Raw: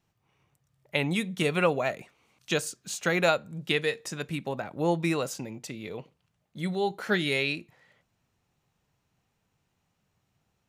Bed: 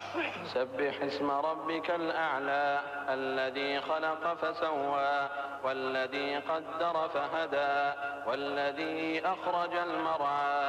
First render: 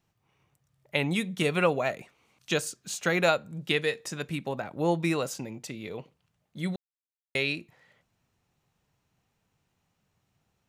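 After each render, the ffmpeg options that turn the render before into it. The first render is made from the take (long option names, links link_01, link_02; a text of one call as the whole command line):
ffmpeg -i in.wav -filter_complex "[0:a]asplit=3[link_01][link_02][link_03];[link_01]atrim=end=6.76,asetpts=PTS-STARTPTS,afade=type=out:start_time=6.756:duration=0.004:curve=hsin[link_04];[link_02]atrim=start=6.76:end=7.35,asetpts=PTS-STARTPTS,volume=0[link_05];[link_03]atrim=start=7.35,asetpts=PTS-STARTPTS,afade=type=in:duration=0.004:curve=hsin[link_06];[link_04][link_05][link_06]concat=n=3:v=0:a=1" out.wav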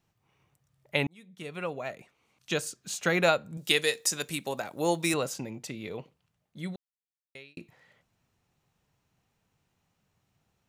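ffmpeg -i in.wav -filter_complex "[0:a]asettb=1/sr,asplit=3[link_01][link_02][link_03];[link_01]atrim=end=3.574[link_04];[link_02]atrim=start=3.57:end=5.14,asetpts=PTS-STARTPTS,afade=type=in:duration=0.004:curve=qsin,afade=type=out:start_time=1.566:duration=0.004:curve=qsin,bass=frequency=250:gain=-7,treble=frequency=4000:gain=14[link_05];[link_03]atrim=start=5.136[link_06];[link_04][link_05]acrossfade=duration=0.004:curve1=hsin:curve2=qsin[link_07];[link_07][link_06]acrossfade=duration=0.004:curve1=qsin:curve2=hsin,asplit=3[link_08][link_09][link_10];[link_08]atrim=end=1.07,asetpts=PTS-STARTPTS,afade=type=out:start_time=1.066:duration=0.004:curve=hsin[link_11];[link_09]atrim=start=1.07:end=7.57,asetpts=PTS-STARTPTS,afade=type=in:duration=1.94,afade=type=out:start_time=4.87:duration=1.63[link_12];[link_10]atrim=start=7.57,asetpts=PTS-STARTPTS,afade=type=in:duration=0.004:curve=hsin[link_13];[link_11][link_12][link_13]concat=n=3:v=0:a=1" out.wav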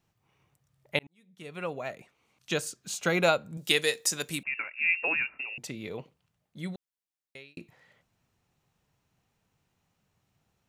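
ffmpeg -i in.wav -filter_complex "[0:a]asettb=1/sr,asplit=3[link_01][link_02][link_03];[link_01]atrim=end=2.884[link_04];[link_02]atrim=start=2.88:end=3.42,asetpts=PTS-STARTPTS,afade=type=in:duration=0.004:curve=qsin,afade=type=out:start_time=0.536:duration=0.004:curve=qsin,bandreject=frequency=1800:width=7.5[link_05];[link_03]atrim=start=3.416[link_06];[link_04][link_05]acrossfade=duration=0.004:curve1=hsin:curve2=qsin[link_07];[link_07][link_06]acrossfade=duration=0.004:curve1=qsin:curve2=hsin,asettb=1/sr,asplit=3[link_08][link_09][link_10];[link_08]atrim=end=4.434[link_11];[link_09]atrim=start=4.43:end=5.58,asetpts=PTS-STARTPTS,afade=type=in:duration=0.004:curve=qsin,afade=type=out:start_time=1.146:duration=0.004:curve=qsin,lowpass=frequency=2500:width_type=q:width=0.5098,lowpass=frequency=2500:width_type=q:width=0.6013,lowpass=frequency=2500:width_type=q:width=0.9,lowpass=frequency=2500:width_type=q:width=2.563,afreqshift=-2900[link_12];[link_10]atrim=start=5.576[link_13];[link_11][link_12]acrossfade=duration=0.004:curve1=hsin:curve2=qsin[link_14];[link_14][link_13]acrossfade=duration=0.004:curve1=qsin:curve2=hsin,asplit=2[link_15][link_16];[link_15]atrim=end=0.99,asetpts=PTS-STARTPTS,afade=type=out:start_time=0.986:duration=0.004:curve=hsin[link_17];[link_16]atrim=start=0.99,asetpts=PTS-STARTPTS,afade=type=in:duration=0.7[link_18];[link_17][link_18]concat=n=2:v=0:a=1" out.wav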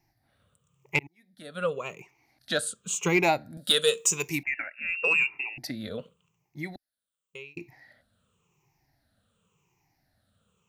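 ffmpeg -i in.wav -af "afftfilt=real='re*pow(10,17/40*sin(2*PI*(0.74*log(max(b,1)*sr/1024/100)/log(2)-(-0.91)*(pts-256)/sr)))':imag='im*pow(10,17/40*sin(2*PI*(0.74*log(max(b,1)*sr/1024/100)/log(2)-(-0.91)*(pts-256)/sr)))':win_size=1024:overlap=0.75,asoftclip=type=tanh:threshold=-11dB" out.wav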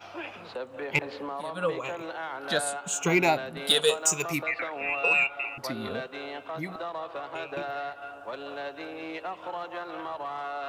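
ffmpeg -i in.wav -i bed.wav -filter_complex "[1:a]volume=-4.5dB[link_01];[0:a][link_01]amix=inputs=2:normalize=0" out.wav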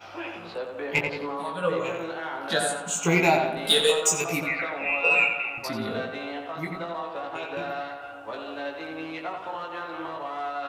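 ffmpeg -i in.wav -filter_complex "[0:a]asplit=2[link_01][link_02];[link_02]adelay=18,volume=-3dB[link_03];[link_01][link_03]amix=inputs=2:normalize=0,asplit=2[link_04][link_05];[link_05]adelay=88,lowpass=frequency=3100:poles=1,volume=-5dB,asplit=2[link_06][link_07];[link_07]adelay=88,lowpass=frequency=3100:poles=1,volume=0.51,asplit=2[link_08][link_09];[link_09]adelay=88,lowpass=frequency=3100:poles=1,volume=0.51,asplit=2[link_10][link_11];[link_11]adelay=88,lowpass=frequency=3100:poles=1,volume=0.51,asplit=2[link_12][link_13];[link_13]adelay=88,lowpass=frequency=3100:poles=1,volume=0.51,asplit=2[link_14][link_15];[link_15]adelay=88,lowpass=frequency=3100:poles=1,volume=0.51[link_16];[link_04][link_06][link_08][link_10][link_12][link_14][link_16]amix=inputs=7:normalize=0" out.wav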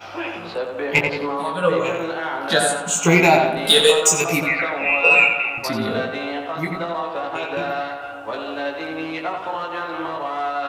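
ffmpeg -i in.wav -af "volume=7.5dB,alimiter=limit=-3dB:level=0:latency=1" out.wav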